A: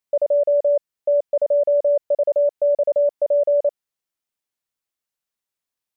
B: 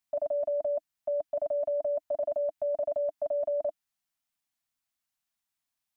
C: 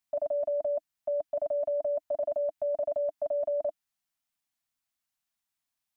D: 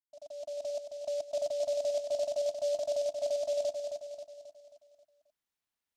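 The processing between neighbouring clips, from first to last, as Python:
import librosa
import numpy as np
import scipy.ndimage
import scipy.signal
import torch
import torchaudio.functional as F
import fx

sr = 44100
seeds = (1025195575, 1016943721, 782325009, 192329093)

y1 = scipy.signal.sosfilt(scipy.signal.ellip(3, 1.0, 40, [300.0, 640.0], 'bandstop', fs=sr, output='sos'), x)
y2 = y1
y3 = fx.fade_in_head(y2, sr, length_s=1.04)
y3 = fx.echo_feedback(y3, sr, ms=268, feedback_pct=49, wet_db=-6)
y3 = fx.noise_mod_delay(y3, sr, seeds[0], noise_hz=4800.0, depth_ms=0.032)
y3 = F.gain(torch.from_numpy(y3), -4.5).numpy()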